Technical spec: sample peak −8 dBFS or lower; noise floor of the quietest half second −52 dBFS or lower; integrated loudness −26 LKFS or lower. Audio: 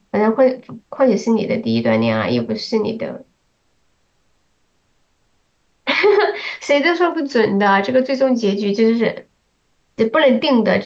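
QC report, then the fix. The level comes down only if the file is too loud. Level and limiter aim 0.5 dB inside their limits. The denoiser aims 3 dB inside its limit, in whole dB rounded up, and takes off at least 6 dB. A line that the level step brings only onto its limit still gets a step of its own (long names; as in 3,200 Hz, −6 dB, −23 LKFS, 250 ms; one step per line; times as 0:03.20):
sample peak −4.5 dBFS: out of spec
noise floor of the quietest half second −63 dBFS: in spec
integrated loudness −16.5 LKFS: out of spec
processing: level −10 dB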